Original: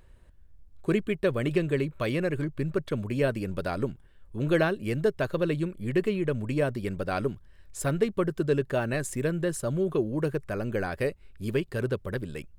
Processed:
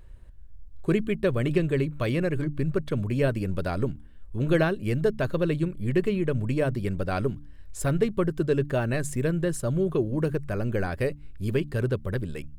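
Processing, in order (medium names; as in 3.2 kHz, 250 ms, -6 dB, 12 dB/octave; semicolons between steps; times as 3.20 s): bass shelf 140 Hz +9.5 dB; de-hum 72.73 Hz, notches 4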